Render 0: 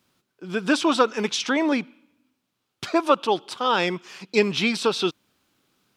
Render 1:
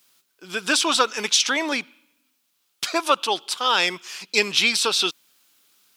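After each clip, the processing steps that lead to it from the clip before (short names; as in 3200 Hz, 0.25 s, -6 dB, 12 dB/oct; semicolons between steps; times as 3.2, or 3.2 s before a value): tilt +4 dB/oct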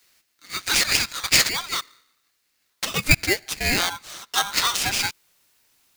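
high-pass sweep 3000 Hz -> 75 Hz, 2.61–4.37; polarity switched at an audio rate 1200 Hz; gain -2.5 dB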